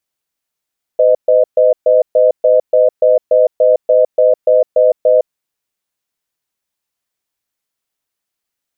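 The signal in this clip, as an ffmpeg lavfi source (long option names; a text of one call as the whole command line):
ffmpeg -f lavfi -i "aevalsrc='0.355*(sin(2*PI*508*t)+sin(2*PI*619*t))*clip(min(mod(t,0.29),0.16-mod(t,0.29))/0.005,0,1)':duration=4.23:sample_rate=44100" out.wav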